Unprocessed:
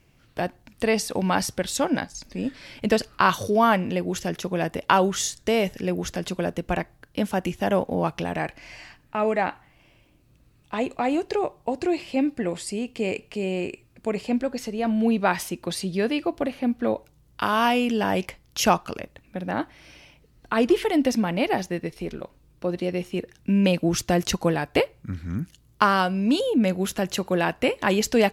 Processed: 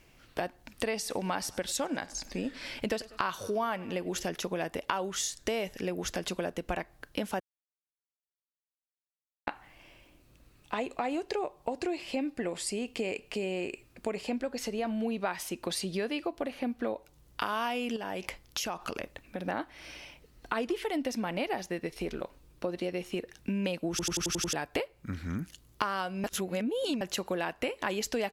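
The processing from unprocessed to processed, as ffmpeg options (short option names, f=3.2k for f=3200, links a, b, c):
-filter_complex "[0:a]asplit=3[a][b][c];[a]afade=t=out:st=1.05:d=0.02[d];[b]aecho=1:1:98|196|294:0.0631|0.0297|0.0139,afade=t=in:st=1.05:d=0.02,afade=t=out:st=4.22:d=0.02[e];[c]afade=t=in:st=4.22:d=0.02[f];[d][e][f]amix=inputs=3:normalize=0,asettb=1/sr,asplit=3[g][h][i];[g]atrim=end=17.964[j];[h]atrim=start=17.96:end=19.48,asetpts=PTS-STARTPTS,afade=t=in:d=0.004:c=qsin,afade=t=out:st=1.516:d=0.004:c=qsin,acompressor=threshold=-30dB:ratio=6:attack=3.2:release=140:knee=1:detection=peak[k];[i]atrim=start=19.476[l];[j][k]acrossfade=d=0.004:c1=hsin:c2=qsin[m];[m][l]acrossfade=d=0.004:c1=qsin:c2=hsin,asplit=12[n][o][p][q][r][s][t][u][v][w][x][y];[n]atrim=end=7.4,asetpts=PTS-STARTPTS,afade=t=out:st=7.396:d=0.004:c=hsin[z];[o]atrim=start=7.4:end=9.47,asetpts=PTS-STARTPTS,volume=0[aa];[p]atrim=start=9.47:end=23.992,asetpts=PTS-STARTPTS,afade=t=in:d=0.004:c=hsin[ab];[q]atrim=start=23.898:end=23.992[ac];[r]atrim=start=23.898:end=23.992[ad];[s]atrim=start=23.898:end=23.992[ae];[t]atrim=start=23.898:end=23.992[af];[u]atrim=start=23.898:end=23.992[ag];[v]atrim=start=23.898:end=23.992[ah];[w]atrim=start=24.528:end=26.242[ai];[x]atrim=start=26.238:end=27.012,asetpts=PTS-STARTPTS,areverse[aj];[y]atrim=start=27.008[ak];[z][aa][ab]concat=n=3:v=0:a=1[al];[al][ac]acrossfade=d=0.004:c1=hsin:c2=hsin[am];[am][ad]acrossfade=d=0.004:c1=hsin:c2=hsin[an];[an][ae]acrossfade=d=0.004:c1=hsin:c2=hsin[ao];[ao][af]acrossfade=d=0.004:c1=hsin:c2=hsin[ap];[ap][ag]acrossfade=d=0.004:c1=hsin:c2=hsin[aq];[aq][ah]acrossfade=d=0.004:c1=hsin:c2=hsin[ar];[ar][ai]acrossfade=d=0.004:c1=hsin:c2=hsin[as];[as][aj]acrossfade=d=0.004:c1=hsin:c2=hsin[at];[at][ak]acrossfade=d=0.004:c1=hsin:c2=hsin,equalizer=f=120:t=o:w=2.1:g=-8.5,acompressor=threshold=-34dB:ratio=4,volume=3dB"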